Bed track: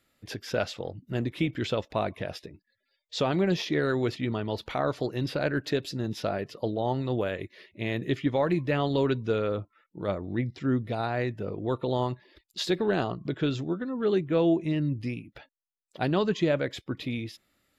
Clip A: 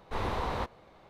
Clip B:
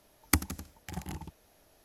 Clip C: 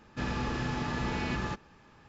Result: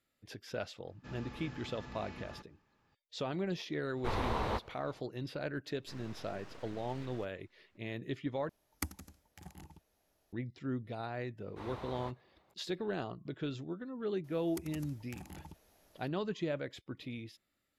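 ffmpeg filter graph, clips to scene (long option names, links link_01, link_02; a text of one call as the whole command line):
ffmpeg -i bed.wav -i cue0.wav -i cue1.wav -i cue2.wav -filter_complex "[3:a]asplit=2[link_01][link_02];[1:a]asplit=2[link_03][link_04];[2:a]asplit=2[link_05][link_06];[0:a]volume=-11dB[link_07];[link_02]aeval=exprs='abs(val(0))':channel_layout=same[link_08];[link_04]highpass=56[link_09];[link_06]acompressor=threshold=-41dB:ratio=6:attack=3.2:release=140:knee=1:detection=peak[link_10];[link_07]asplit=2[link_11][link_12];[link_11]atrim=end=8.494[link_13];[link_05]atrim=end=1.84,asetpts=PTS-STARTPTS,volume=-12.5dB[link_14];[link_12]atrim=start=10.326[link_15];[link_01]atrim=end=2.08,asetpts=PTS-STARTPTS,volume=-16dB,afade=type=in:duration=0.004:curve=hsin,afade=type=out:start_time=2.076:duration=0.004:curve=hsin,adelay=870[link_16];[link_03]atrim=end=1.09,asetpts=PTS-STARTPTS,volume=-2dB,afade=type=in:duration=0.05,afade=type=out:start_time=1.04:duration=0.05,adelay=173313S[link_17];[link_08]atrim=end=2.08,asetpts=PTS-STARTPTS,volume=-17.5dB,afade=type=in:duration=0.004:curve=hsin,afade=type=out:start_time=2.076:duration=0.004:curve=hsin,adelay=5700[link_18];[link_09]atrim=end=1.09,asetpts=PTS-STARTPTS,volume=-13dB,afade=type=in:duration=0.004:curve=hsin,afade=type=out:start_time=1.086:duration=0.004:curve=hsin,adelay=11450[link_19];[link_10]atrim=end=1.84,asetpts=PTS-STARTPTS,volume=-3.5dB,afade=type=in:duration=0.004:curve=hsin,afade=type=out:start_time=1.836:duration=0.004:curve=hsin,adelay=14240[link_20];[link_13][link_14]acrossfade=duration=0.004:curve1=hsin:curve2=hsin[link_21];[link_21][link_15]acrossfade=duration=0.004:curve1=hsin:curve2=hsin[link_22];[link_22][link_16][link_17][link_18][link_19][link_20]amix=inputs=6:normalize=0" out.wav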